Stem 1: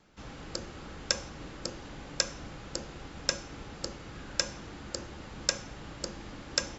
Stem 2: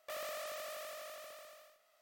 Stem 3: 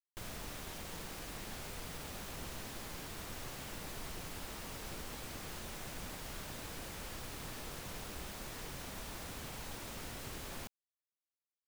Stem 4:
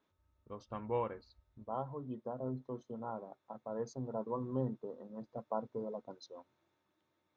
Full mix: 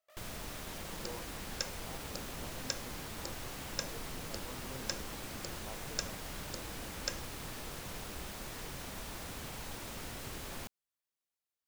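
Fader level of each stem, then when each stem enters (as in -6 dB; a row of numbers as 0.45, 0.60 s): -9.0, -18.0, +1.5, -13.5 dB; 0.50, 0.00, 0.00, 0.15 s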